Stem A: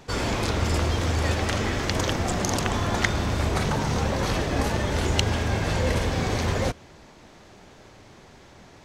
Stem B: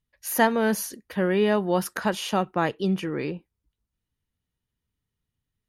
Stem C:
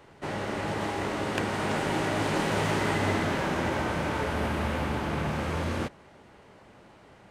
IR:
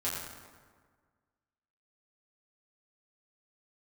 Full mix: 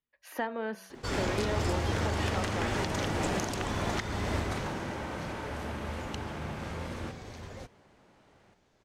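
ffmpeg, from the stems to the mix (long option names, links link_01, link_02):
-filter_complex "[0:a]adelay=950,volume=-6.5dB,afade=type=out:start_time=4.24:duration=0.63:silence=0.223872[link_01];[1:a]acrossover=split=220 3600:gain=0.178 1 0.112[link_02][link_03][link_04];[link_02][link_03][link_04]amix=inputs=3:normalize=0,bandreject=frequency=95.15:width_type=h:width=4,bandreject=frequency=190.3:width_type=h:width=4,bandreject=frequency=285.45:width_type=h:width=4,bandreject=frequency=380.6:width_type=h:width=4,bandreject=frequency=475.75:width_type=h:width=4,bandreject=frequency=570.9:width_type=h:width=4,bandreject=frequency=666.05:width_type=h:width=4,bandreject=frequency=761.2:width_type=h:width=4,bandreject=frequency=856.35:width_type=h:width=4,bandreject=frequency=951.5:width_type=h:width=4,bandreject=frequency=1046.65:width_type=h:width=4,bandreject=frequency=1141.8:width_type=h:width=4,bandreject=frequency=1236.95:width_type=h:width=4,bandreject=frequency=1332.1:width_type=h:width=4,bandreject=frequency=1427.25:width_type=h:width=4,bandreject=frequency=1522.4:width_type=h:width=4,bandreject=frequency=1617.55:width_type=h:width=4,bandreject=frequency=1712.7:width_type=h:width=4,volume=-3.5dB,asplit=2[link_05][link_06];[2:a]adelay=900,volume=0.5dB,asplit=2[link_07][link_08];[link_08]volume=-9.5dB[link_09];[link_06]apad=whole_len=361628[link_10];[link_07][link_10]sidechaingate=range=-33dB:threshold=-51dB:ratio=16:detection=peak[link_11];[link_05][link_11]amix=inputs=2:normalize=0,acompressor=threshold=-33dB:ratio=2.5,volume=0dB[link_12];[link_09]aecho=0:1:338:1[link_13];[link_01][link_12][link_13]amix=inputs=3:normalize=0,alimiter=limit=-19dB:level=0:latency=1:release=297"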